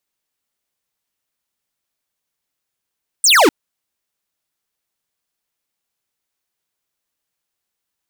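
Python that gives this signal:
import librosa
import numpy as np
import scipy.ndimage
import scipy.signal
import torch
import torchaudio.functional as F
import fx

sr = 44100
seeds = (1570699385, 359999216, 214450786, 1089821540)

y = fx.laser_zap(sr, level_db=-10.0, start_hz=9300.0, end_hz=260.0, length_s=0.25, wave='square')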